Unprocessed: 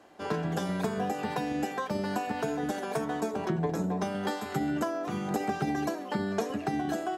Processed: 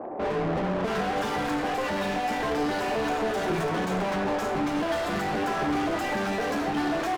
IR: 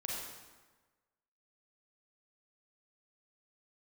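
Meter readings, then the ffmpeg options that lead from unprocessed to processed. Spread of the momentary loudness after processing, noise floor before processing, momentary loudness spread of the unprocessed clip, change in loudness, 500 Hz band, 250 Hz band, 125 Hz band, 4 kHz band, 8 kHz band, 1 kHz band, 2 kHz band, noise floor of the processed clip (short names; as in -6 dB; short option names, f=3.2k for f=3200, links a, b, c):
1 LU, -39 dBFS, 2 LU, +4.5 dB, +5.0 dB, +2.5 dB, 0.0 dB, +7.5 dB, +2.5 dB, +5.5 dB, +7.5 dB, -29 dBFS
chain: -filter_complex "[0:a]acrossover=split=910[a][b];[b]adelay=650[c];[a][c]amix=inputs=2:normalize=0,asplit=2[d][e];[e]highpass=f=720:p=1,volume=40dB,asoftclip=type=tanh:threshold=-16.5dB[f];[d][f]amix=inputs=2:normalize=0,lowpass=f=1.7k:p=1,volume=-6dB,asplit=2[g][h];[1:a]atrim=start_sample=2205,adelay=27[i];[h][i]afir=irnorm=-1:irlink=0,volume=-11.5dB[j];[g][j]amix=inputs=2:normalize=0,flanger=delay=7.9:depth=5.6:regen=-64:speed=0.65:shape=triangular"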